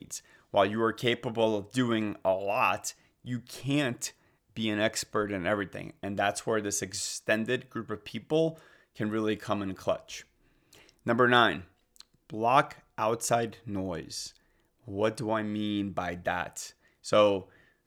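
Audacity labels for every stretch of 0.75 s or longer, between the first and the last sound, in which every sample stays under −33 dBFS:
10.180000	11.070000	silence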